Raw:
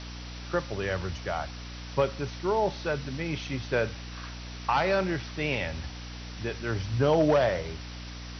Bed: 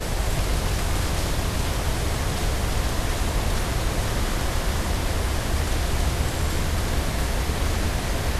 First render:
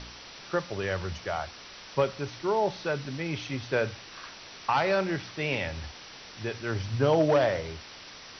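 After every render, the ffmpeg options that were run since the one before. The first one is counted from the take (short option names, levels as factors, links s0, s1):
-af "bandreject=f=60:t=h:w=4,bandreject=f=120:t=h:w=4,bandreject=f=180:t=h:w=4,bandreject=f=240:t=h:w=4,bandreject=f=300:t=h:w=4"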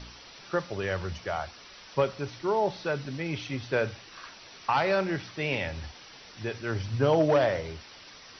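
-af "afftdn=nr=6:nf=-47"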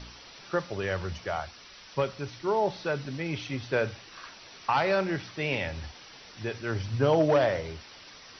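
-filter_complex "[0:a]asettb=1/sr,asplit=3[s0][s1][s2];[s0]atrim=end=1.404[s3];[s1]atrim=start=1.4:end=2.47,asetpts=PTS-STARTPTS,afade=t=in:d=0.004:c=qsin,afade=t=out:st=1.066:d=0.004:c=qsin,equalizer=f=570:w=0.48:g=-3[s4];[s2]atrim=start=2.466[s5];[s3][s4]acrossfade=d=0.004:c1=hsin:c2=qsin[s6];[s6][s5]acrossfade=d=0.004:c1=qsin:c2=hsin"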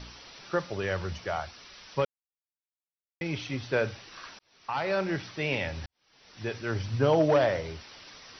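-filter_complex "[0:a]asplit=5[s0][s1][s2][s3][s4];[s0]atrim=end=2.05,asetpts=PTS-STARTPTS,afade=t=out:st=2.046:d=0.004:c=hsin[s5];[s1]atrim=start=2.05:end=3.21,asetpts=PTS-STARTPTS,volume=0[s6];[s2]atrim=start=3.21:end=4.39,asetpts=PTS-STARTPTS,afade=t=in:d=0.004:c=hsin,afade=t=out:st=1.176:d=0.004:c=hsin[s7];[s3]atrim=start=4.39:end=5.86,asetpts=PTS-STARTPTS,afade=t=in:d=0.74,afade=t=out:st=1.466:d=0.004:c=hsin[s8];[s4]atrim=start=5.86,asetpts=PTS-STARTPTS,afade=t=in:d=0.61:c=qua[s9];[s5][s6][s7][s8][s9]concat=n=5:v=0:a=1"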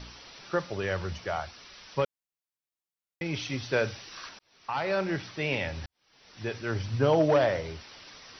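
-filter_complex "[0:a]asettb=1/sr,asplit=3[s0][s1][s2];[s0]atrim=end=3.344[s3];[s1]atrim=start=3.34:end=4.29,asetpts=PTS-STARTPTS,afade=t=in:d=0.004:c=qsin,afade=t=out:st=0.946:d=0.004:c=qsin,highshelf=f=4600:g=9[s4];[s2]atrim=start=4.286[s5];[s3][s4]acrossfade=d=0.004:c1=hsin:c2=qsin[s6];[s6][s5]acrossfade=d=0.004:c1=qsin:c2=hsin"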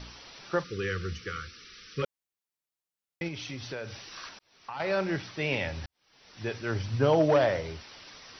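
-filter_complex "[0:a]asplit=3[s0][s1][s2];[s0]afade=t=out:st=0.63:d=0.02[s3];[s1]asuperstop=centerf=770:order=20:qfactor=1.2,afade=t=in:st=0.63:d=0.02,afade=t=out:st=2.02:d=0.02[s4];[s2]afade=t=in:st=2.02:d=0.02[s5];[s3][s4][s5]amix=inputs=3:normalize=0,asettb=1/sr,asplit=3[s6][s7][s8];[s6]atrim=end=3.284[s9];[s7]atrim=start=3.28:end=4.8,asetpts=PTS-STARTPTS,afade=t=in:d=0.004:c=qsin,afade=t=out:st=1.516:d=0.004:c=qsin,acompressor=threshold=0.0158:ratio=3:attack=3.2:release=140:knee=1:detection=peak[s10];[s8]atrim=start=4.796[s11];[s9][s10]acrossfade=d=0.004:c1=hsin:c2=qsin[s12];[s12][s11]acrossfade=d=0.004:c1=qsin:c2=hsin"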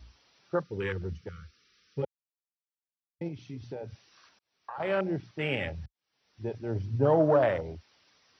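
-af "afwtdn=0.0251,highpass=58"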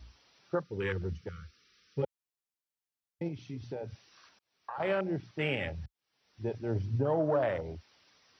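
-af "alimiter=limit=0.1:level=0:latency=1:release=367"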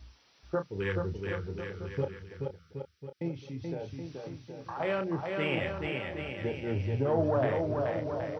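-filter_complex "[0:a]asplit=2[s0][s1];[s1]adelay=30,volume=0.355[s2];[s0][s2]amix=inputs=2:normalize=0,aecho=1:1:430|774|1049|1269|1445:0.631|0.398|0.251|0.158|0.1"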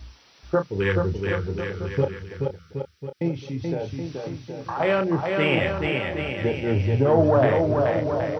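-af "volume=2.99"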